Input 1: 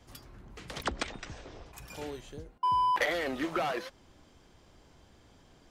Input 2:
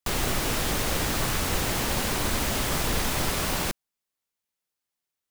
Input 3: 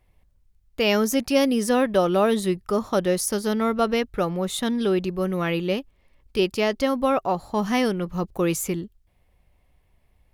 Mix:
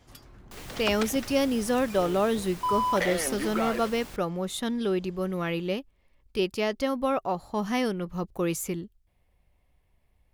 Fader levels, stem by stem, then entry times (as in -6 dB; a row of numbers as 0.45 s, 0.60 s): 0.0 dB, -17.5 dB, -5.0 dB; 0.00 s, 0.45 s, 0.00 s